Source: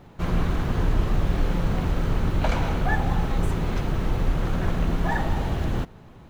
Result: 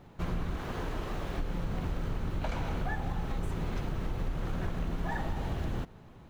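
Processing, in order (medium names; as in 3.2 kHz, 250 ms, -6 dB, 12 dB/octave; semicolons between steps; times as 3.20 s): 0.57–1.38 s: tone controls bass -9 dB, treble 0 dB; compression, threshold -23 dBFS, peak gain reduction 8 dB; trim -5.5 dB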